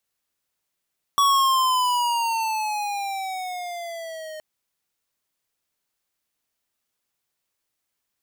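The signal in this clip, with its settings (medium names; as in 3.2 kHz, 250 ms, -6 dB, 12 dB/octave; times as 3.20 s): gliding synth tone square, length 3.22 s, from 1.13 kHz, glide -10.5 st, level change -19 dB, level -17 dB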